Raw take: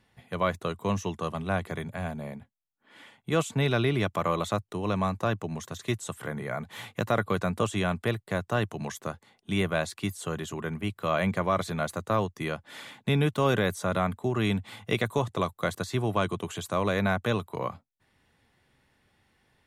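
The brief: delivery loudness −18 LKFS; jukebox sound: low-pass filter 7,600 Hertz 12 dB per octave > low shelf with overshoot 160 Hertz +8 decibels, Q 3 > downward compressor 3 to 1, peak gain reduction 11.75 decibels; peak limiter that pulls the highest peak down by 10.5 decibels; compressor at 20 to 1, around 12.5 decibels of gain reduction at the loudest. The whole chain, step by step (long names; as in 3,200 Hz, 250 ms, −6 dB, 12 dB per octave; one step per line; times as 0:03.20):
downward compressor 20 to 1, threshold −33 dBFS
brickwall limiter −29 dBFS
low-pass filter 7,600 Hz 12 dB per octave
low shelf with overshoot 160 Hz +8 dB, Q 3
downward compressor 3 to 1, threshold −40 dBFS
level +25 dB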